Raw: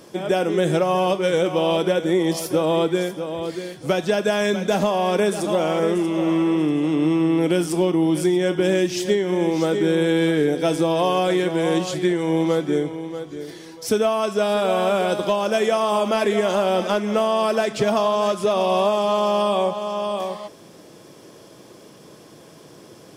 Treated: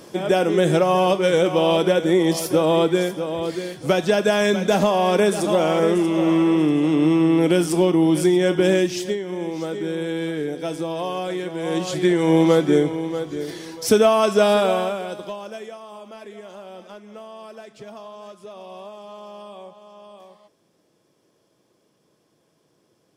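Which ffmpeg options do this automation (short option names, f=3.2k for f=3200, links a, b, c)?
-af "volume=13.5dB,afade=t=out:st=8.71:d=0.48:silence=0.354813,afade=t=in:st=11.59:d=0.71:silence=0.266073,afade=t=out:st=14.48:d=0.48:silence=0.237137,afade=t=out:st=14.96:d=0.84:silence=0.266073"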